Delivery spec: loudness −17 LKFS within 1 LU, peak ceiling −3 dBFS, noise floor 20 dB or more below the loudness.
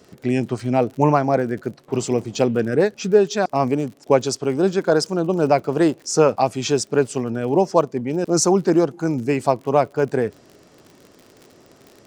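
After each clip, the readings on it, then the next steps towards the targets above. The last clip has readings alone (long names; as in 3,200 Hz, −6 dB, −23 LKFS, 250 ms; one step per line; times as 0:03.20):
crackle rate 53 per second; integrated loudness −20.0 LKFS; sample peak −2.5 dBFS; target loudness −17.0 LKFS
→ click removal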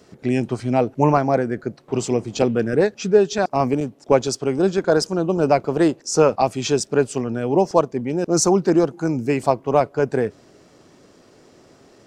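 crackle rate 0 per second; integrated loudness −20.0 LKFS; sample peak −2.5 dBFS; target loudness −17.0 LKFS
→ level +3 dB
brickwall limiter −3 dBFS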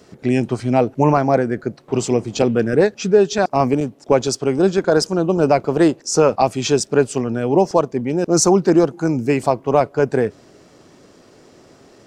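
integrated loudness −17.5 LKFS; sample peak −3.0 dBFS; background noise floor −49 dBFS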